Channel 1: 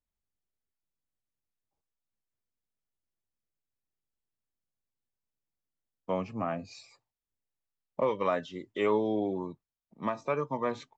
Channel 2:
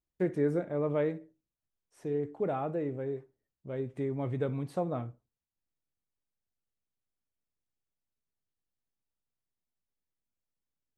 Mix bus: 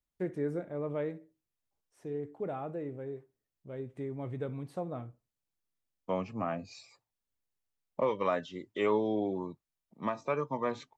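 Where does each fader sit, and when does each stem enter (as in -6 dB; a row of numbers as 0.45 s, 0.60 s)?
-1.5 dB, -5.0 dB; 0.00 s, 0.00 s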